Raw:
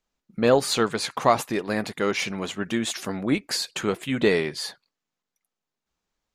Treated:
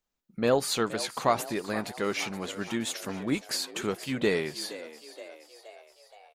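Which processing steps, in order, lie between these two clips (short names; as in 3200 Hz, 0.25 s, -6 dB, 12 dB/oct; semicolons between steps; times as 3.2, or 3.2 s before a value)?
high shelf 12000 Hz +10 dB; frequency-shifting echo 0.472 s, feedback 59%, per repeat +76 Hz, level -15 dB; gain -5.5 dB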